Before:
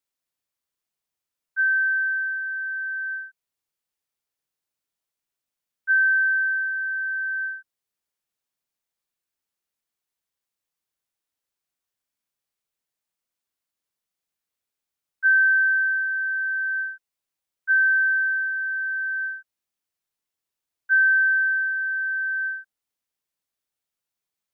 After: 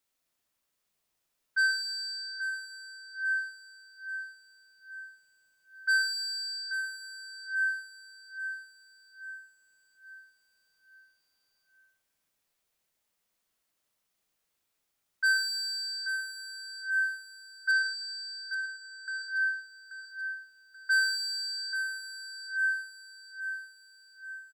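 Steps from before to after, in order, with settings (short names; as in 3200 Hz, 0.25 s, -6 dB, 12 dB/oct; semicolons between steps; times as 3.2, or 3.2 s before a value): in parallel at -3 dB: limiter -21 dBFS, peak gain reduction 8 dB; on the sum: soft clip -22.5 dBFS, distortion -10 dB; 17.71–19.08 air absorption 92 m; feedback echo 0.833 s, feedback 45%, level -8 dB; on a send at -4 dB: reverb RT60 0.95 s, pre-delay 55 ms; on the sum: AAC 192 kbps 44100 Hz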